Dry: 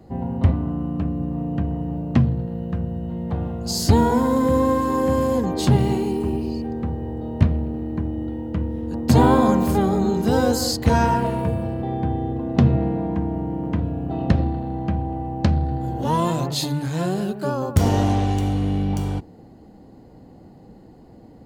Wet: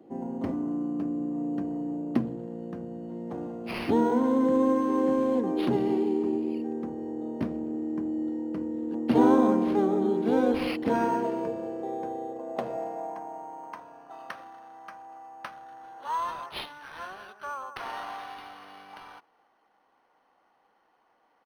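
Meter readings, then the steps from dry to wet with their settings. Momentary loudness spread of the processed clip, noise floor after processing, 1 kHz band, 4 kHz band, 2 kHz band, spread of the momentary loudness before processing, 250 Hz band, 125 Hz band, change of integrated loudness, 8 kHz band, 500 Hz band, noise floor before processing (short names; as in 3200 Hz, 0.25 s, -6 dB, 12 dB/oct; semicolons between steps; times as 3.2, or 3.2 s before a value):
20 LU, -68 dBFS, -7.0 dB, -13.0 dB, -6.5 dB, 9 LU, -5.5 dB, -22.5 dB, -6.5 dB, under -20 dB, -5.0 dB, -46 dBFS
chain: high-pass sweep 300 Hz -> 1200 Hz, 10.96–14.33; speakerphone echo 0.28 s, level -29 dB; decimation joined by straight lines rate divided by 6×; gain -8 dB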